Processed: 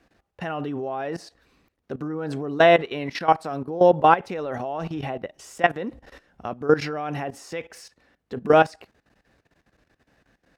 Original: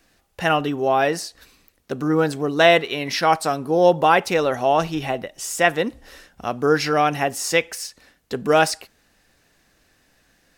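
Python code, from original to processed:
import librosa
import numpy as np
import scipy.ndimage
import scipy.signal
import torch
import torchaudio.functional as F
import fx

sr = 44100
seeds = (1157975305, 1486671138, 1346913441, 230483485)

y = fx.lowpass(x, sr, hz=1400.0, slope=6)
y = fx.level_steps(y, sr, step_db=16)
y = scipy.signal.sosfilt(scipy.signal.butter(2, 42.0, 'highpass', fs=sr, output='sos'), y)
y = y * librosa.db_to_amplitude(3.0)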